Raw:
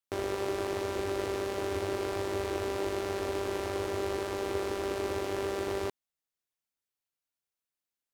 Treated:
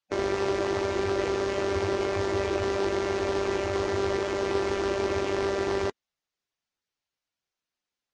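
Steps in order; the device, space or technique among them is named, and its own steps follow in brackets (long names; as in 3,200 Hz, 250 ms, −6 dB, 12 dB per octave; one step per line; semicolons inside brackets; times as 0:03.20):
clip after many re-uploads (low-pass filter 6,700 Hz 24 dB per octave; spectral magnitudes quantised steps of 15 dB)
level +6 dB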